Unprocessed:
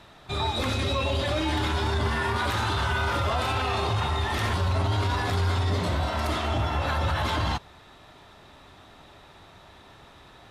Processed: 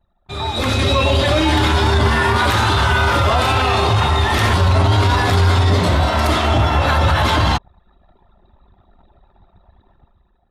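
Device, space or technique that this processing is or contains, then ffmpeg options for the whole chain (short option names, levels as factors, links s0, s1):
voice memo with heavy noise removal: -af "anlmdn=0.158,dynaudnorm=f=170:g=7:m=3.98"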